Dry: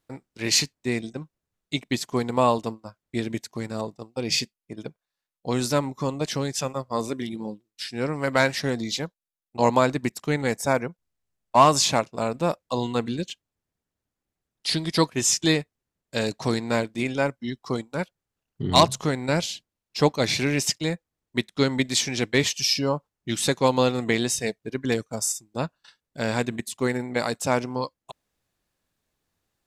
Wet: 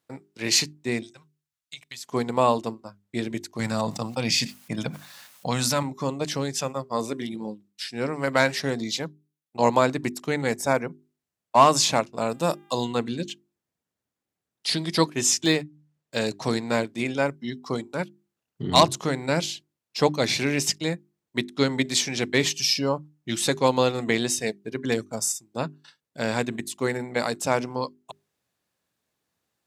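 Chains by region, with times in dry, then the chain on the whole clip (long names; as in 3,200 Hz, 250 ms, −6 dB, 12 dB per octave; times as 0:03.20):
0:01.03–0:02.07: guitar amp tone stack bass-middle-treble 10-0-10 + downward compressor, threshold −34 dBFS
0:03.59–0:05.83: parametric band 380 Hz −15 dB 0.66 octaves + envelope flattener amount 70%
0:12.28–0:12.84: high-shelf EQ 5,000 Hz +11.5 dB + notch filter 2,200 Hz, Q 7.7 + hum with harmonics 400 Hz, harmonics 9, −56 dBFS −7 dB per octave
0:15.44–0:16.17: running median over 3 samples + mains-hum notches 50/100/150/200/250 Hz
whole clip: high-pass filter 110 Hz; mains-hum notches 50/100/150/200/250/300/350/400 Hz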